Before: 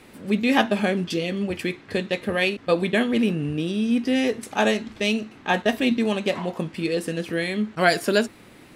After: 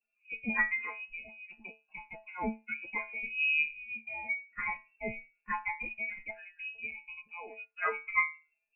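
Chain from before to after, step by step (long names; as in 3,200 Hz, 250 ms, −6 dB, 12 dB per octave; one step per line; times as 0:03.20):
spectral dynamics exaggerated over time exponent 2
stiff-string resonator 150 Hz, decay 0.33 s, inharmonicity 0.002
voice inversion scrambler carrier 2,700 Hz
level +5 dB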